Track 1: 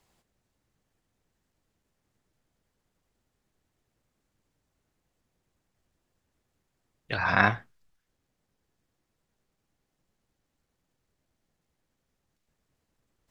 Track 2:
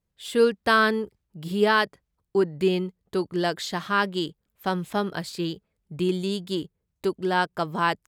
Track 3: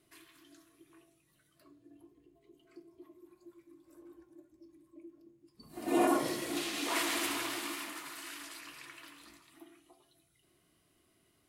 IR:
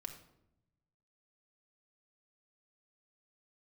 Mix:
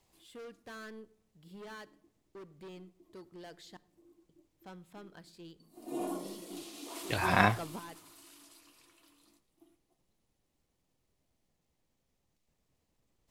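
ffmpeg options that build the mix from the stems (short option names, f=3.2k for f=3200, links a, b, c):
-filter_complex "[0:a]equalizer=f=1.5k:w=2.5:g=-7,volume=-1.5dB,asplit=3[a][b][c];[b]volume=-19dB[d];[1:a]volume=23dB,asoftclip=hard,volume=-23dB,volume=-12dB,asplit=3[e][f][g];[e]atrim=end=3.77,asetpts=PTS-STARTPTS,afade=t=out:st=3.766:d=0.004:c=hsin[h];[f]atrim=start=3.77:end=4.29,asetpts=PTS-STARTPTS,volume=0[i];[g]atrim=start=4.29,asetpts=PTS-STARTPTS,afade=t=in:d=0.004:c=hsin[j];[h][i][j]concat=n=3:v=0:a=1,asplit=2[k][l];[l]volume=-17.5dB[m];[2:a]agate=range=-11dB:threshold=-58dB:ratio=16:detection=peak,highpass=f=190:w=0.5412,highpass=f=190:w=1.3066,equalizer=f=1.8k:w=1.1:g=-13.5,volume=-8dB[n];[c]apad=whole_len=355920[o];[k][o]sidechaingate=range=-12dB:threshold=-58dB:ratio=16:detection=peak[p];[3:a]atrim=start_sample=2205[q];[d][m]amix=inputs=2:normalize=0[r];[r][q]afir=irnorm=-1:irlink=0[s];[a][p][n][s]amix=inputs=4:normalize=0"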